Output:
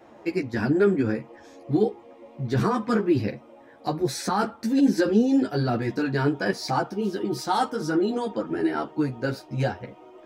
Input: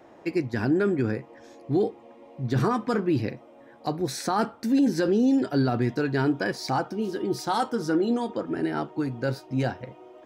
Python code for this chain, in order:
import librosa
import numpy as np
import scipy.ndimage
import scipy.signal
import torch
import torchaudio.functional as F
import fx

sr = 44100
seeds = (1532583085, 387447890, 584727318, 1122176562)

y = fx.ensemble(x, sr)
y = F.gain(torch.from_numpy(y), 4.5).numpy()